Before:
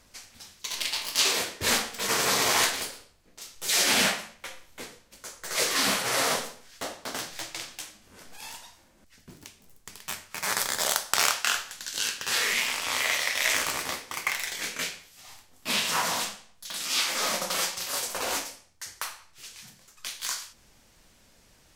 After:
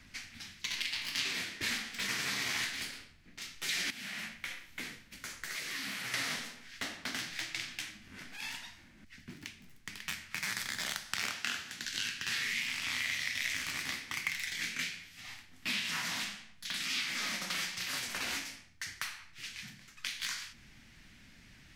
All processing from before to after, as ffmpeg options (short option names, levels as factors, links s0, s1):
-filter_complex "[0:a]asettb=1/sr,asplit=3[s0][s1][s2];[s0]atrim=end=3.904[s3];[s1]atrim=start=3.9:end=6.14,asetpts=PTS-STARTPTS,afade=t=in:d=0.004:c=qsin,afade=t=out:st=2.236:d=0.004:c=qsin,highshelf=f=11000:g=10,acompressor=threshold=0.0178:ratio=10:attack=3.2:release=140:knee=1:detection=peak[s4];[s2]atrim=start=6.136[s5];[s3][s4]acrossfade=d=0.004:c1=hsin:c2=qsin[s6];[s6][s5]acrossfade=d=0.004:c1=qsin:c2=hsin,asettb=1/sr,asplit=3[s7][s8][s9];[s7]atrim=end=11.234[s10];[s8]atrim=start=11.23:end=11.85,asetpts=PTS-STARTPTS,afade=t=in:d=0.004:c=qsin,afade=t=out:st=0.616:d=0.004:c=qsin,highpass=63,equalizer=f=410:t=o:w=2.2:g=11,bandreject=f=50:t=h:w=6,bandreject=f=100:t=h:w=6,bandreject=f=150:t=h:w=6[s11];[s9]atrim=start=11.846[s12];[s10][s11]acrossfade=d=0.004:c1=hsin:c2=qsin[s13];[s13][s12]acrossfade=d=0.004:c1=qsin:c2=hsin,equalizer=f=125:t=o:w=1:g=4,equalizer=f=250:t=o:w=1:g=5,equalizer=f=500:t=o:w=1:g=-12,equalizer=f=1000:t=o:w=1:g=-6,equalizer=f=2000:t=o:w=1:g=8,equalizer=f=8000:t=o:w=1:g=-5,equalizer=f=16000:t=o:w=1:g=-11,acrossover=split=220|3600[s14][s15][s16];[s14]acompressor=threshold=0.00158:ratio=4[s17];[s15]acompressor=threshold=0.00891:ratio=4[s18];[s16]acompressor=threshold=0.00891:ratio=4[s19];[s17][s18][s19]amix=inputs=3:normalize=0,volume=1.26"